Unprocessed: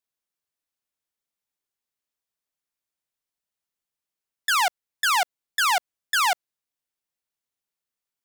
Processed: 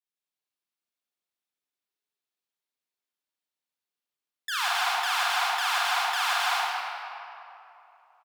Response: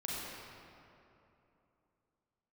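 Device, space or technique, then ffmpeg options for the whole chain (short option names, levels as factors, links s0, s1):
stadium PA: -filter_complex "[0:a]highpass=210,equalizer=f=3500:t=o:w=1.2:g=4,aecho=1:1:160.3|268.2:0.631|0.708[s0];[1:a]atrim=start_sample=2205[s1];[s0][s1]afir=irnorm=-1:irlink=0,volume=0.376"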